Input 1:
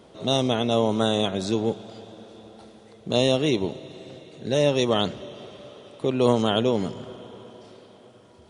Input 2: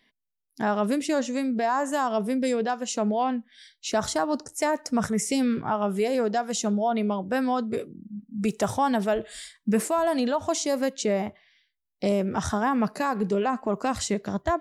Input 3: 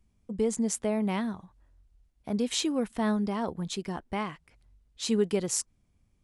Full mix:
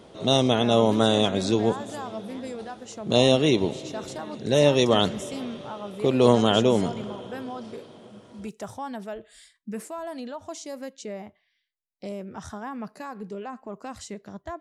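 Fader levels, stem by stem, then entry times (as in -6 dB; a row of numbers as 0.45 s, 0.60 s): +2.0 dB, -11.0 dB, -16.0 dB; 0.00 s, 0.00 s, 1.20 s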